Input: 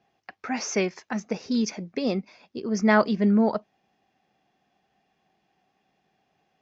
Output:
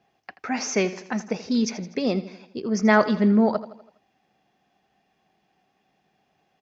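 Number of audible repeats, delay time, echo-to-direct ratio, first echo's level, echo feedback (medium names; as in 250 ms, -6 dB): 4, 82 ms, -13.5 dB, -15.0 dB, 51%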